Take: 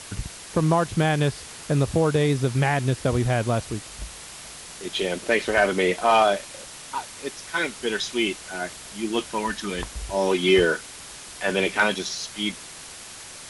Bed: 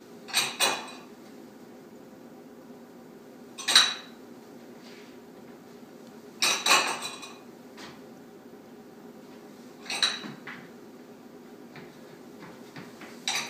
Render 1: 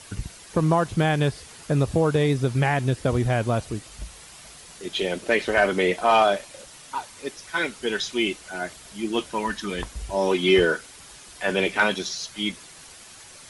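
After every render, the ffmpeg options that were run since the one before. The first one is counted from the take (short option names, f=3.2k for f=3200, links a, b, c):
-af "afftdn=nr=7:nf=-41"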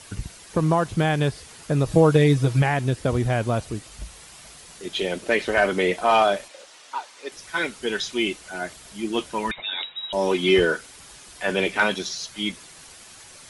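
-filter_complex "[0:a]asettb=1/sr,asplit=3[a][b][c];[a]atrim=end=1.854[d];[b]atrim=start=1.85:end=2.62,asetpts=PTS-STARTPTS,afade=t=in:d=0.004:c=qsin,afade=t=out:st=0.766:d=0.004:c=qsin,aecho=1:1:6.3:0.89,atrim=end_sample=33957[e];[c]atrim=start=2.616[f];[d][e]acrossfade=d=0.004:c1=hsin:c2=qsin[g];[g][f]acrossfade=d=0.004:c1=qsin:c2=hsin,asettb=1/sr,asplit=3[h][i][j];[h]atrim=end=6.484[k];[i]atrim=start=6.48:end=7.32,asetpts=PTS-STARTPTS,afade=t=in:d=0.004:c=qsin,afade=t=out:st=0.836:d=0.004:c=qsin,acrossover=split=320 7200:gain=0.0708 1 0.224[l][m][n];[l][m][n]amix=inputs=3:normalize=0[o];[j]atrim=start=7.316[p];[k][o]acrossfade=d=0.004:c1=hsin:c2=qsin[q];[q][p]acrossfade=d=0.004:c1=qsin:c2=hsin,asettb=1/sr,asplit=3[r][s][t];[r]atrim=end=9.514[u];[s]atrim=start=9.51:end=10.13,asetpts=PTS-STARTPTS,afade=t=in:d=0.004:c=qsin,afade=t=out:st=0.616:d=0.004:c=qsin,lowpass=f=3.3k:t=q:w=0.5098,lowpass=f=3.3k:t=q:w=0.6013,lowpass=f=3.3k:t=q:w=0.9,lowpass=f=3.3k:t=q:w=2.563,afreqshift=-3900[v];[t]atrim=start=10.126[w];[u][v]acrossfade=d=0.004:c1=hsin:c2=qsin[x];[x][w]acrossfade=d=0.004:c1=qsin:c2=hsin"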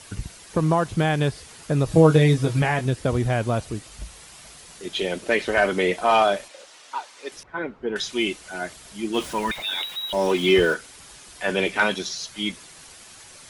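-filter_complex "[0:a]asettb=1/sr,asplit=3[a][b][c];[a]atrim=end=1.944[d];[b]atrim=start=1.94:end=2.86,asetpts=PTS-STARTPTS,afade=t=in:d=0.004:c=qsin,afade=t=out:st=0.916:d=0.004:c=qsin,asplit=2[e][f];[f]adelay=19,volume=-7dB[g];[e][g]amix=inputs=2:normalize=0,atrim=end_sample=40572[h];[c]atrim=start=2.856[i];[d][h]acrossfade=d=0.004:c1=hsin:c2=qsin[j];[j][i]acrossfade=d=0.004:c1=qsin:c2=hsin,asettb=1/sr,asplit=3[k][l][m];[k]atrim=end=7.434[n];[l]atrim=start=7.43:end=7.96,asetpts=PTS-STARTPTS,afade=t=in:d=0.004:c=qsin,afade=t=out:st=0.526:d=0.004:c=qsin,lowpass=1.1k[o];[m]atrim=start=7.956[p];[n][o]acrossfade=d=0.004:c1=hsin:c2=qsin[q];[q][p]acrossfade=d=0.004:c1=qsin:c2=hsin,asettb=1/sr,asplit=3[r][s][t];[r]atrim=end=9.144[u];[s]atrim=start=9.14:end=10.74,asetpts=PTS-STARTPTS,afade=t=in:d=0.004:c=qsin,afade=t=out:st=1.596:d=0.004:c=qsin,aeval=exprs='val(0)+0.5*0.0188*sgn(val(0))':c=same[v];[t]atrim=start=10.736[w];[u][v]acrossfade=d=0.004:c1=hsin:c2=qsin[x];[x][w]acrossfade=d=0.004:c1=qsin:c2=hsin"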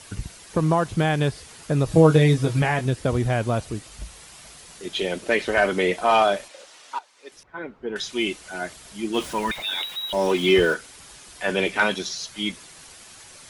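-filter_complex "[0:a]asplit=2[a][b];[a]atrim=end=6.99,asetpts=PTS-STARTPTS,afade=t=out:st=6.986:d=0.004:c=hsin:silence=0.223872[c];[b]atrim=start=6.99,asetpts=PTS-STARTPTS,afade=t=in:d=1.39:silence=0.223872[d];[c][d]concat=n=2:v=0:a=1"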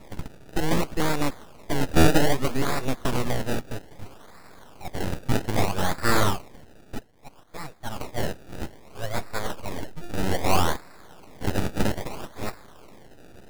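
-af "acrusher=samples=28:mix=1:aa=0.000001:lfo=1:lforange=28:lforate=0.62,aeval=exprs='abs(val(0))':c=same"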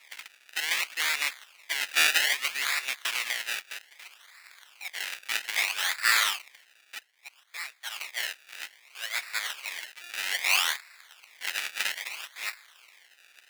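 -filter_complex "[0:a]asplit=2[a][b];[b]acrusher=bits=5:mix=0:aa=0.000001,volume=-8dB[c];[a][c]amix=inputs=2:normalize=0,highpass=f=2.2k:t=q:w=2.1"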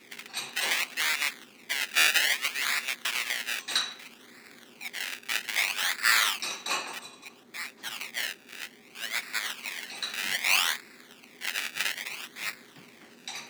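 -filter_complex "[1:a]volume=-9.5dB[a];[0:a][a]amix=inputs=2:normalize=0"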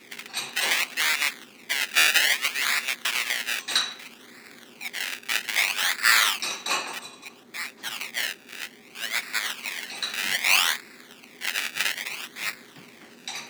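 -af "volume=4dB,alimiter=limit=-1dB:level=0:latency=1"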